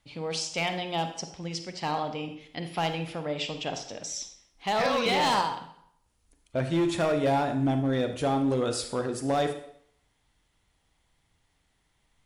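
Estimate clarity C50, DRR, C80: 8.5 dB, 7.0 dB, 12.0 dB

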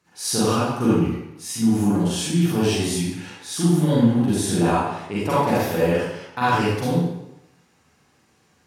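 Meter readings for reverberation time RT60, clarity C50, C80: 0.90 s, -4.0 dB, 0.5 dB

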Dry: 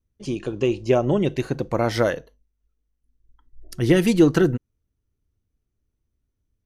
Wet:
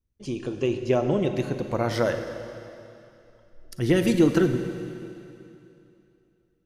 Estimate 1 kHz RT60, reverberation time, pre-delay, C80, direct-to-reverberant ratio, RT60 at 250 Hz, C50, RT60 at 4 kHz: 2.8 s, 2.8 s, 36 ms, 8.5 dB, 7.0 dB, 2.8 s, 7.5 dB, 2.7 s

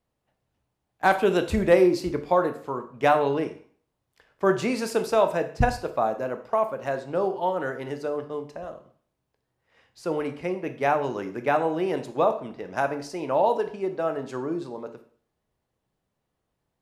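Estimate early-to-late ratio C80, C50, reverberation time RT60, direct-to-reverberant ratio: 16.0 dB, 12.0 dB, 0.50 s, 7.5 dB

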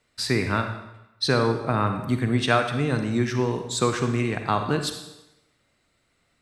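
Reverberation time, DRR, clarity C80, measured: 0.95 s, 6.0 dB, 9.0 dB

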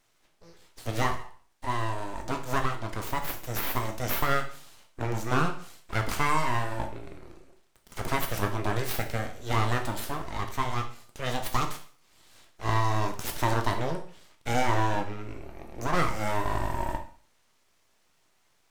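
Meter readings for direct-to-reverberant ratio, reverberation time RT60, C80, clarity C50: 4.0 dB, 0.50 s, 14.0 dB, 10.0 dB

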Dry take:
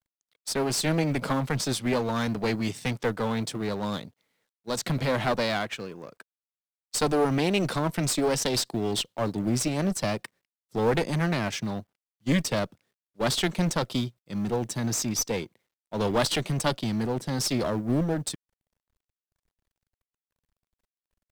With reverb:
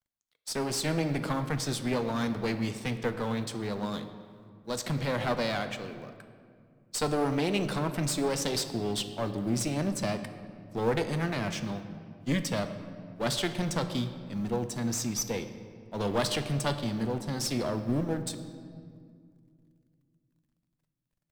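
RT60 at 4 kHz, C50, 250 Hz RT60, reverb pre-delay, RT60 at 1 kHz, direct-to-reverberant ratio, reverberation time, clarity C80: 1.3 s, 10.0 dB, 3.0 s, 8 ms, 2.0 s, 8.0 dB, 2.2 s, 11.0 dB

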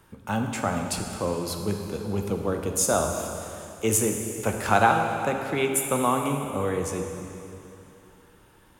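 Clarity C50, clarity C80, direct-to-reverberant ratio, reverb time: 4.0 dB, 5.0 dB, 3.0 dB, 2.9 s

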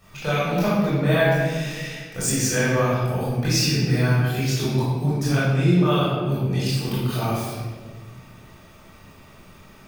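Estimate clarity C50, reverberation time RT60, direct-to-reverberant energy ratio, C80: -3.0 dB, 1.6 s, -10.5 dB, 0.5 dB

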